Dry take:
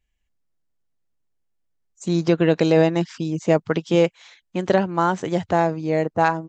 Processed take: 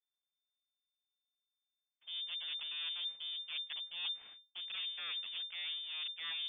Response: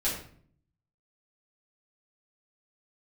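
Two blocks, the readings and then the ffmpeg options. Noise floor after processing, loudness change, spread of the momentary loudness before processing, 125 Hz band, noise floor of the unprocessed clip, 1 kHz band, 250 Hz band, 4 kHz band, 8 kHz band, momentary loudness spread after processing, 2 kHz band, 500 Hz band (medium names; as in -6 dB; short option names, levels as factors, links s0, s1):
under -85 dBFS, -18.5 dB, 8 LU, under -40 dB, -73 dBFS, -36.0 dB, under -40 dB, +1.0 dB, no reading, 5 LU, -17.0 dB, under -40 dB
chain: -af "agate=range=0.1:threshold=0.00398:ratio=16:detection=peak,highshelf=f=2600:g=-9.5,aeval=exprs='abs(val(0))':c=same,areverse,acompressor=threshold=0.0141:ratio=12,areverse,lowpass=f=3100:t=q:w=0.5098,lowpass=f=3100:t=q:w=0.6013,lowpass=f=3100:t=q:w=0.9,lowpass=f=3100:t=q:w=2.563,afreqshift=-3600,volume=0.891"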